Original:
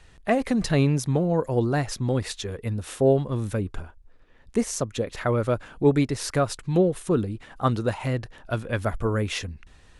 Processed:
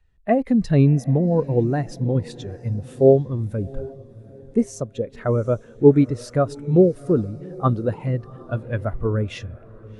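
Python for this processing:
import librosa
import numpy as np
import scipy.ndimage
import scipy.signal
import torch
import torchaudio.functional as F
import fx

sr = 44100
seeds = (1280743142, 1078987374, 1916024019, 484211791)

y = fx.echo_diffused(x, sr, ms=745, feedback_pct=50, wet_db=-12.5)
y = fx.spectral_expand(y, sr, expansion=1.5)
y = y * 10.0 ** (6.5 / 20.0)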